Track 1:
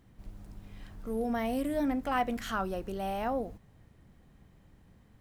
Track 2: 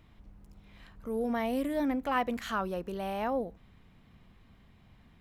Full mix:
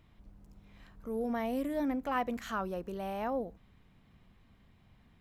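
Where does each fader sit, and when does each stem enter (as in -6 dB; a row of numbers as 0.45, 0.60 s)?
-17.5, -4.0 dB; 0.00, 0.00 s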